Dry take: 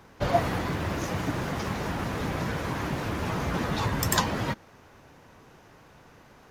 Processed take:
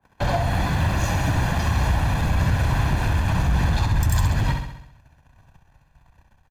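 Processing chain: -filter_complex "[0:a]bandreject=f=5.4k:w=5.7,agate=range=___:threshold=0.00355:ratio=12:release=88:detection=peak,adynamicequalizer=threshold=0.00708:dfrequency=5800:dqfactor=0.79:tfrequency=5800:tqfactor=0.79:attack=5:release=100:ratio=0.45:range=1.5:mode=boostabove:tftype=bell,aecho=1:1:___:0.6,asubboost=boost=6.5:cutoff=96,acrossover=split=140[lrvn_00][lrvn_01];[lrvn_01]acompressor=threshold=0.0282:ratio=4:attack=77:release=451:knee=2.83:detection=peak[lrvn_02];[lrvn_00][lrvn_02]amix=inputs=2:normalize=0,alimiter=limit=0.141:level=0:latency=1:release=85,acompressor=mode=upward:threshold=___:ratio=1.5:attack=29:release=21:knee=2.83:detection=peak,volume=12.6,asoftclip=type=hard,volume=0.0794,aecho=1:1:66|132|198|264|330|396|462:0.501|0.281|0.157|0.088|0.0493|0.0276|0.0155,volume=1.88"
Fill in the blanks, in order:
0.00316, 1.2, 0.02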